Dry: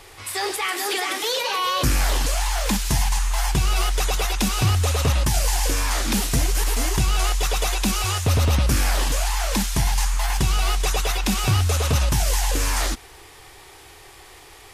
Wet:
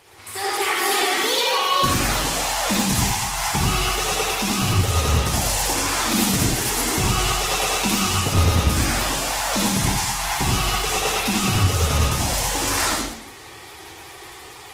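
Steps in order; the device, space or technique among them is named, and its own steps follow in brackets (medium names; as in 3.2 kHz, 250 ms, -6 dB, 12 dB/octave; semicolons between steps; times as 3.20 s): far-field microphone of a smart speaker (reverberation RT60 0.75 s, pre-delay 54 ms, DRR -3.5 dB; high-pass 110 Hz 12 dB/octave; level rider gain up to 6.5 dB; trim -5 dB; Opus 16 kbps 48 kHz)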